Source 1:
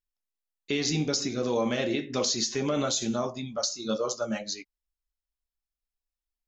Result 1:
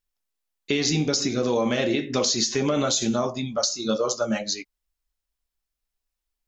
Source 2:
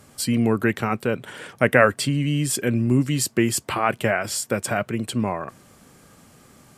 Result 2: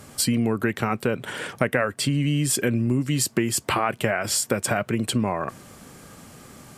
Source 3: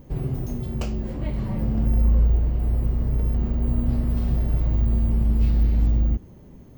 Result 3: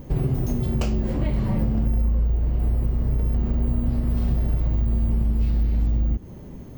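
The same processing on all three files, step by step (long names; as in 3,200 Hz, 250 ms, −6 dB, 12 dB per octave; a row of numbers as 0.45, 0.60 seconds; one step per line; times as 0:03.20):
downward compressor 6 to 1, threshold −25 dBFS
loudness normalisation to −24 LKFS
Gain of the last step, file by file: +6.5, +6.0, +7.0 decibels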